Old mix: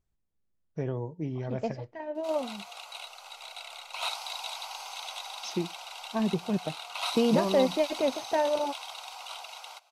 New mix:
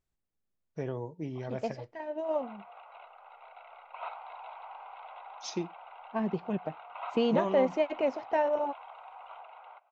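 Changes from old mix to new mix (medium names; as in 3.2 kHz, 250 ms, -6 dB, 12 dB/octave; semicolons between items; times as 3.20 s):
background: add Gaussian low-pass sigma 4.9 samples; master: add bass shelf 260 Hz -7 dB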